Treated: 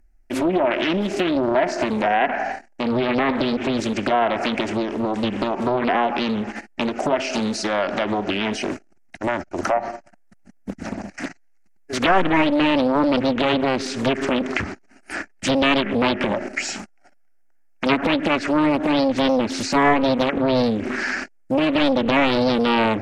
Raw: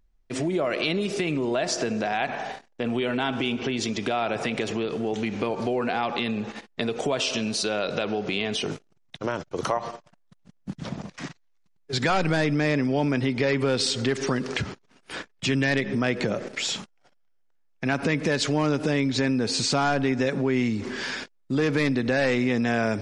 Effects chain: static phaser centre 710 Hz, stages 8; low-pass that closes with the level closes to 2.4 kHz, closed at -24 dBFS; loudspeaker Doppler distortion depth 0.93 ms; trim +9 dB

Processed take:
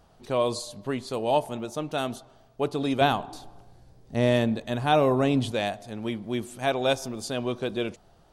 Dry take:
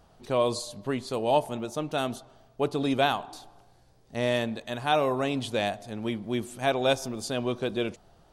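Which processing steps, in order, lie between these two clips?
3.01–5.52 s: bass shelf 460 Hz +9 dB

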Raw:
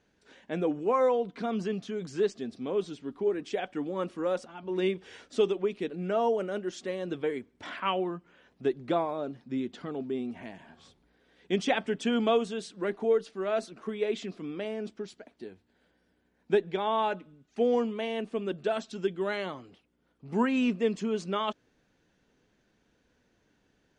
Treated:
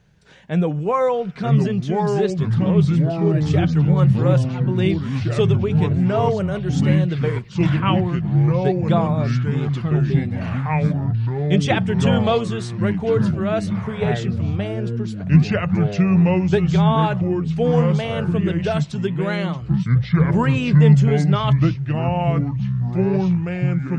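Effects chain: ever faster or slower copies 799 ms, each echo -4 st, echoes 3; resonant low shelf 200 Hz +9 dB, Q 3; trim +7.5 dB

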